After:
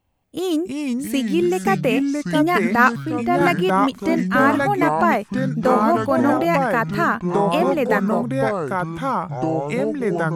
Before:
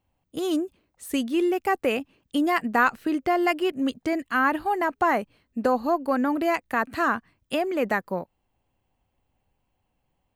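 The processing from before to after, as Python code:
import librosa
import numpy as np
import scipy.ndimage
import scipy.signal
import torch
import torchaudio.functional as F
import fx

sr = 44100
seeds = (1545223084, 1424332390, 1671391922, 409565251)

y = fx.echo_pitch(x, sr, ms=227, semitones=-4, count=3, db_per_echo=-3.0)
y = fx.band_widen(y, sr, depth_pct=100, at=(2.75, 3.41))
y = y * librosa.db_to_amplitude(4.0)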